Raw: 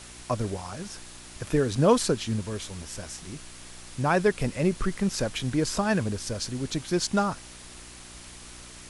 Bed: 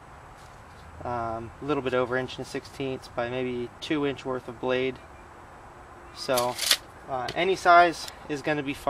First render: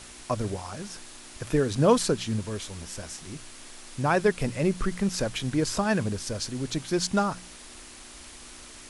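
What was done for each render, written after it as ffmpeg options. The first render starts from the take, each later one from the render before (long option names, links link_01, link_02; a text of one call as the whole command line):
ffmpeg -i in.wav -af "bandreject=frequency=60:width_type=h:width=4,bandreject=frequency=120:width_type=h:width=4,bandreject=frequency=180:width_type=h:width=4" out.wav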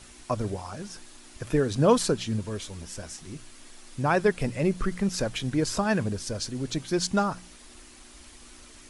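ffmpeg -i in.wav -af "afftdn=noise_reduction=6:noise_floor=-46" out.wav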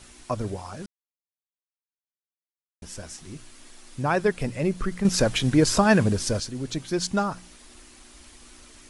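ffmpeg -i in.wav -filter_complex "[0:a]asplit=5[link_01][link_02][link_03][link_04][link_05];[link_01]atrim=end=0.86,asetpts=PTS-STARTPTS,afade=type=out:start_time=0.856:duration=0.004:curve=hsin[link_06];[link_02]atrim=start=0.86:end=2.82,asetpts=PTS-STARTPTS,volume=0[link_07];[link_03]atrim=start=2.82:end=5.052,asetpts=PTS-STARTPTS,afade=type=in:duration=0.004:curve=hsin[link_08];[link_04]atrim=start=5.048:end=6.402,asetpts=PTS-STARTPTS,volume=7dB[link_09];[link_05]atrim=start=6.398[link_10];[link_06][link_07][link_08]concat=n=3:v=0:a=1[link_11];[link_11][link_09]acrossfade=duration=0.004:curve1=hsin:curve2=hsin[link_12];[link_12][link_10]acrossfade=duration=0.004:curve1=hsin:curve2=hsin" out.wav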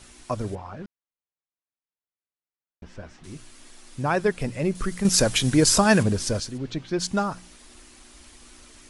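ffmpeg -i in.wav -filter_complex "[0:a]asettb=1/sr,asplit=3[link_01][link_02][link_03];[link_01]atrim=end=0.554[link_04];[link_02]atrim=start=0.55:end=3.24,asetpts=PTS-STARTPTS,afade=type=in:duration=0.004:curve=qsin,afade=type=out:start_time=2.686:duration=0.004:curve=qsin,lowpass=2400[link_05];[link_03]atrim=start=3.236[link_06];[link_04][link_05]acrossfade=duration=0.004:curve1=hsin:curve2=qsin[link_07];[link_07][link_06]acrossfade=duration=0.004:curve1=qsin:curve2=hsin,asettb=1/sr,asplit=3[link_08][link_09][link_10];[link_08]atrim=end=4.754[link_11];[link_09]atrim=start=4.75:end=6.03,asetpts=PTS-STARTPTS,afade=type=in:duration=0.004:curve=qsin,afade=type=out:start_time=1.276:duration=0.004:curve=qsin,highshelf=frequency=5100:gain=10.5[link_12];[link_10]atrim=start=6.026[link_13];[link_11][link_12]acrossfade=duration=0.004:curve1=hsin:curve2=qsin[link_14];[link_14][link_13]acrossfade=duration=0.004:curve1=qsin:curve2=hsin,asplit=3[link_15][link_16][link_17];[link_15]afade=type=out:start_time=6.57:duration=0.02[link_18];[link_16]lowpass=3900,afade=type=in:start_time=6.57:duration=0.02,afade=type=out:start_time=6.98:duration=0.02[link_19];[link_17]afade=type=in:start_time=6.98:duration=0.02[link_20];[link_18][link_19][link_20]amix=inputs=3:normalize=0" out.wav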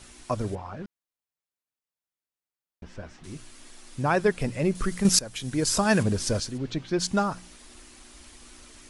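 ffmpeg -i in.wav -filter_complex "[0:a]asplit=2[link_01][link_02];[link_01]atrim=end=5.19,asetpts=PTS-STARTPTS,afade=type=out:start_time=5.186:duration=0.004:curve=hsin:silence=0.0891251[link_03];[link_02]atrim=start=5.19,asetpts=PTS-STARTPTS,afade=type=in:duration=1.21:silence=0.0891251[link_04];[link_03][link_04]concat=n=2:v=0:a=1" out.wav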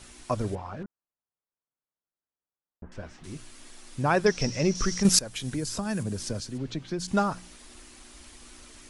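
ffmpeg -i in.wav -filter_complex "[0:a]asettb=1/sr,asplit=3[link_01][link_02][link_03];[link_01]atrim=end=0.834[link_04];[link_02]atrim=start=0.83:end=2.92,asetpts=PTS-STARTPTS,afade=type=in:duration=0.004:curve=qsin,afade=type=out:start_time=2.086:duration=0.004:curve=qsin,lowpass=frequency=1500:width=0.5412,lowpass=frequency=1500:width=1.3066[link_05];[link_03]atrim=start=2.916[link_06];[link_04][link_05]acrossfade=duration=0.004:curve1=hsin:curve2=qsin[link_07];[link_07][link_06]acrossfade=duration=0.004:curve1=qsin:curve2=hsin,asettb=1/sr,asplit=3[link_08][link_09][link_10];[link_08]atrim=end=4.264[link_11];[link_09]atrim=start=4.26:end=5.03,asetpts=PTS-STARTPTS,afade=type=in:duration=0.004:curve=qsin,afade=type=out:start_time=0.766:duration=0.004:curve=qsin,lowpass=frequency=5700:width_type=q:width=13[link_12];[link_10]atrim=start=5.026[link_13];[link_11][link_12]acrossfade=duration=0.004:curve1=hsin:curve2=qsin[link_14];[link_14][link_13]acrossfade=duration=0.004:curve1=qsin:curve2=hsin,asettb=1/sr,asplit=3[link_15][link_16][link_17];[link_15]atrim=end=5.544[link_18];[link_16]atrim=start=5.54:end=7.08,asetpts=PTS-STARTPTS,afade=type=in:duration=0.004:curve=qsin,afade=type=out:start_time=1.536:duration=0.004:curve=qsin,acrossover=split=110|280|6500[link_19][link_20][link_21][link_22];[link_19]acompressor=threshold=-42dB:ratio=3[link_23];[link_20]acompressor=threshold=-33dB:ratio=3[link_24];[link_21]acompressor=threshold=-38dB:ratio=3[link_25];[link_22]acompressor=threshold=-43dB:ratio=3[link_26];[link_23][link_24][link_25][link_26]amix=inputs=4:normalize=0[link_27];[link_17]atrim=start=7.076[link_28];[link_18][link_27]acrossfade=duration=0.004:curve1=hsin:curve2=qsin[link_29];[link_29][link_28]acrossfade=duration=0.004:curve1=qsin:curve2=hsin" out.wav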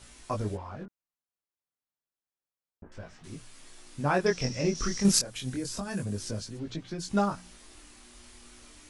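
ffmpeg -i in.wav -af "flanger=delay=18:depth=6.9:speed=0.3" out.wav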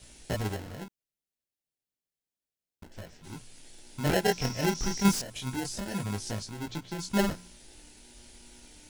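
ffmpeg -i in.wav -filter_complex "[0:a]acrossover=split=1800[link_01][link_02];[link_01]acrusher=samples=37:mix=1:aa=0.000001[link_03];[link_02]volume=31.5dB,asoftclip=hard,volume=-31.5dB[link_04];[link_03][link_04]amix=inputs=2:normalize=0" out.wav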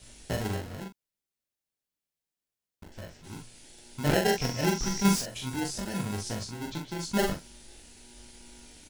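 ffmpeg -i in.wav -filter_complex "[0:a]asplit=2[link_01][link_02];[link_02]adelay=42,volume=-4.5dB[link_03];[link_01][link_03]amix=inputs=2:normalize=0" out.wav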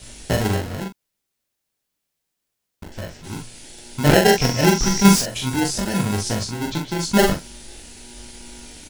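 ffmpeg -i in.wav -af "volume=11dB" out.wav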